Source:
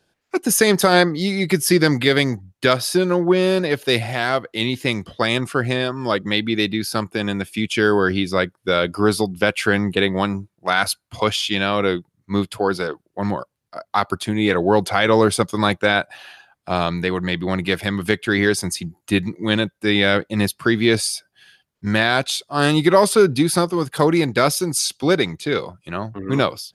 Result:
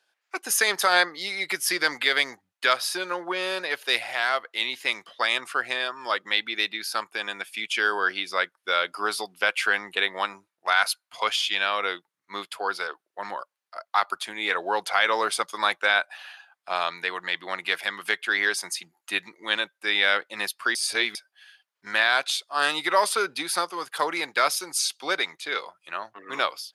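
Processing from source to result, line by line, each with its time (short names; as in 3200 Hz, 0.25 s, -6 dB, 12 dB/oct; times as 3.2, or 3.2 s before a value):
20.75–21.15 reverse
whole clip: HPF 1000 Hz 12 dB/oct; high shelf 4000 Hz -6 dB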